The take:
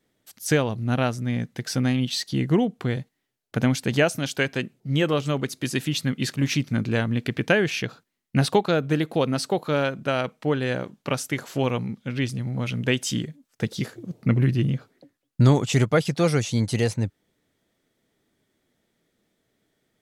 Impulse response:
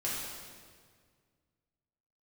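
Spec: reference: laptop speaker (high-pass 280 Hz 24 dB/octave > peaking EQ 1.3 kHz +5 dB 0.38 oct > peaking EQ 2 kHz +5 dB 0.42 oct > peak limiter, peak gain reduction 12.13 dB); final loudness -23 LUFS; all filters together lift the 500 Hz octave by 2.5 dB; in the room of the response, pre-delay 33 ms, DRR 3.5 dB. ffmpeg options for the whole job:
-filter_complex "[0:a]equalizer=f=500:t=o:g=3,asplit=2[s0][s1];[1:a]atrim=start_sample=2205,adelay=33[s2];[s1][s2]afir=irnorm=-1:irlink=0,volume=0.376[s3];[s0][s3]amix=inputs=2:normalize=0,highpass=f=280:w=0.5412,highpass=f=280:w=1.3066,equalizer=f=1300:t=o:w=0.38:g=5,equalizer=f=2000:t=o:w=0.42:g=5,volume=1.5,alimiter=limit=0.266:level=0:latency=1"

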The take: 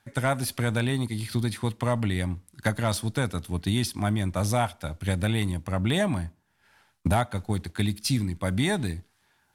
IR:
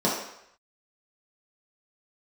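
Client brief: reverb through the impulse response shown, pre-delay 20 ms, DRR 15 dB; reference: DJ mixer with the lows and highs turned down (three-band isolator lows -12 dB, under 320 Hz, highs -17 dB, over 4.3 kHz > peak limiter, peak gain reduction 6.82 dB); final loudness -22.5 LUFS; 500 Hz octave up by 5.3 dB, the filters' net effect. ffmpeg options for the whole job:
-filter_complex "[0:a]equalizer=f=500:t=o:g=8,asplit=2[s0][s1];[1:a]atrim=start_sample=2205,adelay=20[s2];[s1][s2]afir=irnorm=-1:irlink=0,volume=0.0335[s3];[s0][s3]amix=inputs=2:normalize=0,acrossover=split=320 4300:gain=0.251 1 0.141[s4][s5][s6];[s4][s5][s6]amix=inputs=3:normalize=0,volume=2.66,alimiter=limit=0.355:level=0:latency=1"

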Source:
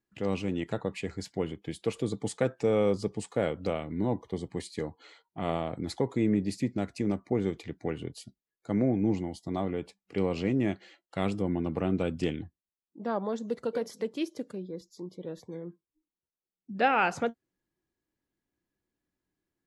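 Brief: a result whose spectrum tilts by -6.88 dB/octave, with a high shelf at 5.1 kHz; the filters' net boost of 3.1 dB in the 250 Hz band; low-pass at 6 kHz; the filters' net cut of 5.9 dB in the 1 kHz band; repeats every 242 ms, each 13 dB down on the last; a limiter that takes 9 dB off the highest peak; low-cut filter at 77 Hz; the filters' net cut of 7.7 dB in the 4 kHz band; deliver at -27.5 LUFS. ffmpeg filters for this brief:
-af "highpass=77,lowpass=6000,equalizer=f=250:t=o:g=4.5,equalizer=f=1000:t=o:g=-8.5,equalizer=f=4000:t=o:g=-5.5,highshelf=f=5100:g=-9,alimiter=limit=0.0708:level=0:latency=1,aecho=1:1:242|484|726:0.224|0.0493|0.0108,volume=2.24"

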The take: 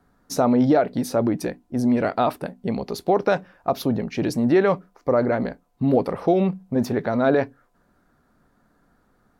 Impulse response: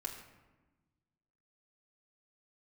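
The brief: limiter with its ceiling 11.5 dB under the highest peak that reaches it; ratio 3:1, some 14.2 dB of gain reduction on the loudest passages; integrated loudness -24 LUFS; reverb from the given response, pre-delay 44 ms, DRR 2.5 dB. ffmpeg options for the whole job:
-filter_complex "[0:a]acompressor=threshold=0.02:ratio=3,alimiter=level_in=2:limit=0.0631:level=0:latency=1,volume=0.501,asplit=2[s0][s1];[1:a]atrim=start_sample=2205,adelay=44[s2];[s1][s2]afir=irnorm=-1:irlink=0,volume=0.794[s3];[s0][s3]amix=inputs=2:normalize=0,volume=4.73"

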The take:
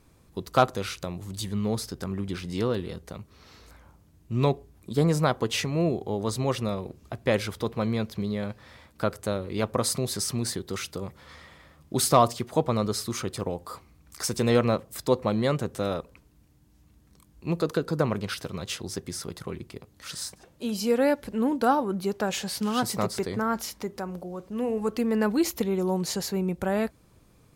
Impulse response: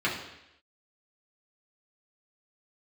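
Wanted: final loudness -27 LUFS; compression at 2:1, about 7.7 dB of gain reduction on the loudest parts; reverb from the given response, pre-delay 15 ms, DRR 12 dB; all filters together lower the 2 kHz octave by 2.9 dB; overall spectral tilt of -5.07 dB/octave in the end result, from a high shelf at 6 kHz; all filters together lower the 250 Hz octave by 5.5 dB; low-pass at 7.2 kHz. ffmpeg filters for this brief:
-filter_complex "[0:a]lowpass=7200,equalizer=f=250:t=o:g=-7.5,equalizer=f=2000:t=o:g=-3.5,highshelf=f=6000:g=-3.5,acompressor=threshold=0.0355:ratio=2,asplit=2[s0][s1];[1:a]atrim=start_sample=2205,adelay=15[s2];[s1][s2]afir=irnorm=-1:irlink=0,volume=0.0668[s3];[s0][s3]amix=inputs=2:normalize=0,volume=2.24"

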